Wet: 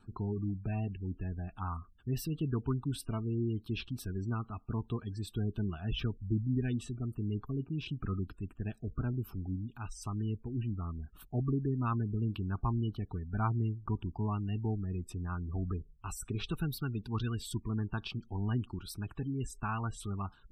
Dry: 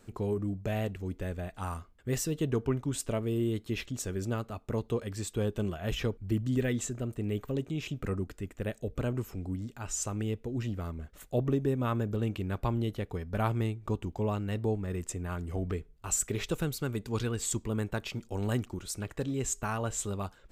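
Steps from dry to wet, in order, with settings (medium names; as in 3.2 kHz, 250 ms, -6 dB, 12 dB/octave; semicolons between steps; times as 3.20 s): spectral gate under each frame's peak -25 dB strong; static phaser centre 2 kHz, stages 6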